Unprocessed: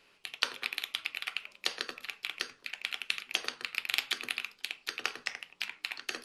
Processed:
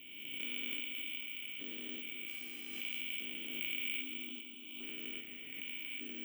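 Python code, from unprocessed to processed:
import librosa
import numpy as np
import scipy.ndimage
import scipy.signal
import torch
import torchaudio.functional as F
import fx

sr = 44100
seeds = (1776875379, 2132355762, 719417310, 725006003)

p1 = fx.spec_steps(x, sr, hold_ms=400)
p2 = fx.formant_cascade(p1, sr, vowel='i')
p3 = fx.dmg_buzz(p2, sr, base_hz=400.0, harmonics=38, level_db=-75.0, tilt_db=0, odd_only=False, at=(2.27, 2.99), fade=0.02)
p4 = fx.fixed_phaser(p3, sr, hz=520.0, stages=6, at=(4.02, 4.83))
p5 = fx.mod_noise(p4, sr, seeds[0], snr_db=27)
p6 = p5 + fx.echo_feedback(p5, sr, ms=254, feedback_pct=39, wet_db=-8, dry=0)
p7 = (np.kron(scipy.signal.resample_poly(p6, 1, 2), np.eye(2)[0]) * 2)[:len(p6)]
p8 = fx.pre_swell(p7, sr, db_per_s=32.0)
y = F.gain(torch.from_numpy(p8), 13.0).numpy()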